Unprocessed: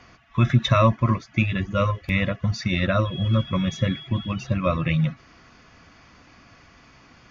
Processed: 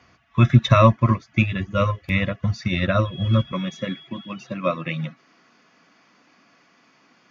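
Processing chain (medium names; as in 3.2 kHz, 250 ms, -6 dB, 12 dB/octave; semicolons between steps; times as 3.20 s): high-pass 55 Hz 24 dB/octave, from 3.52 s 180 Hz; upward expansion 1.5:1, over -33 dBFS; trim +5 dB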